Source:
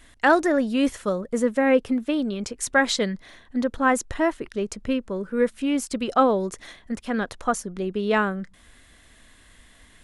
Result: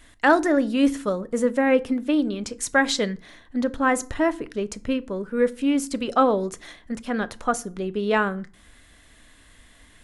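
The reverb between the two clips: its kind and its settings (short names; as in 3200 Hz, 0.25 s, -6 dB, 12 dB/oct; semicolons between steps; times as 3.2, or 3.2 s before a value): FDN reverb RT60 0.39 s, low-frequency decay 1.5×, high-frequency decay 0.7×, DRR 13.5 dB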